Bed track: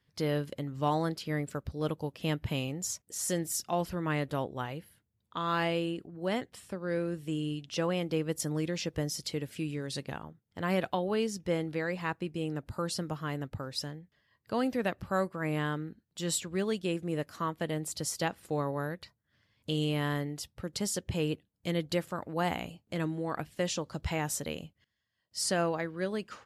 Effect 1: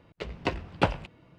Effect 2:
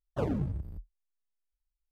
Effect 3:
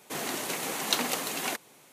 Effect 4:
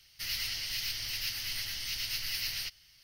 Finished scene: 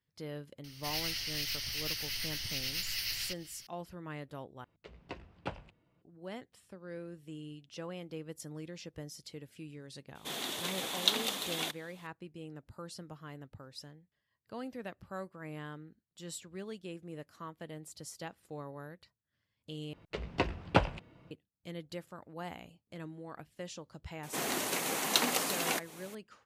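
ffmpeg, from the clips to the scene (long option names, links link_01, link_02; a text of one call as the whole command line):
ffmpeg -i bed.wav -i cue0.wav -i cue1.wav -i cue2.wav -i cue3.wav -filter_complex "[1:a]asplit=2[link_01][link_02];[3:a]asplit=2[link_03][link_04];[0:a]volume=-12dB[link_05];[4:a]acompressor=mode=upward:threshold=-43dB:ratio=2.5:attack=3.2:release=140:knee=2.83:detection=peak[link_06];[link_01]bandreject=frequency=50:width_type=h:width=6,bandreject=frequency=100:width_type=h:width=6,bandreject=frequency=150:width_type=h:width=6,bandreject=frequency=200:width_type=h:width=6,bandreject=frequency=250:width_type=h:width=6[link_07];[link_03]equalizer=frequency=3500:width_type=o:width=0.39:gain=14[link_08];[link_04]acompressor=mode=upward:threshold=-42dB:ratio=2.5:attack=3.2:release=140:knee=2.83:detection=peak[link_09];[link_05]asplit=3[link_10][link_11][link_12];[link_10]atrim=end=4.644[link_13];[link_07]atrim=end=1.38,asetpts=PTS-STARTPTS,volume=-15.5dB[link_14];[link_11]atrim=start=6.016:end=19.934[link_15];[link_02]atrim=end=1.38,asetpts=PTS-STARTPTS,volume=-2dB[link_16];[link_12]atrim=start=21.306[link_17];[link_06]atrim=end=3.03,asetpts=PTS-STARTPTS,volume=-1.5dB,afade=type=in:duration=0.004:curve=hsin,afade=type=out:start_time=3.026:duration=0.004:curve=hsin,adelay=640[link_18];[link_08]atrim=end=1.92,asetpts=PTS-STARTPTS,volume=-7.5dB,afade=type=in:duration=0.004:curve=hsin,afade=type=out:start_time=1.916:duration=0.004:curve=hsin,adelay=10150[link_19];[link_09]atrim=end=1.92,asetpts=PTS-STARTPTS,volume=-1dB,afade=type=in:duration=0.004:curve=hsin,afade=type=out:start_time=1.916:duration=0.004:curve=hsin,adelay=24230[link_20];[link_13][link_14]acrossfade=duration=0.004:curve1=hsin:curve2=hsin[link_21];[link_21][link_15]acrossfade=duration=0.004:curve1=hsin:curve2=hsin[link_22];[link_22][link_16]acrossfade=duration=0.004:curve1=hsin:curve2=hsin[link_23];[link_23][link_17]acrossfade=duration=0.004:curve1=hsin:curve2=hsin[link_24];[link_24][link_18][link_19][link_20]amix=inputs=4:normalize=0" out.wav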